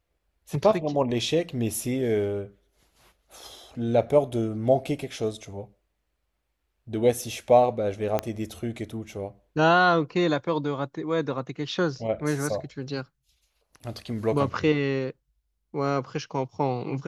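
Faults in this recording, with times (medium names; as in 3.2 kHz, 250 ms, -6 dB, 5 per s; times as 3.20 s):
8.19 s: pop -12 dBFS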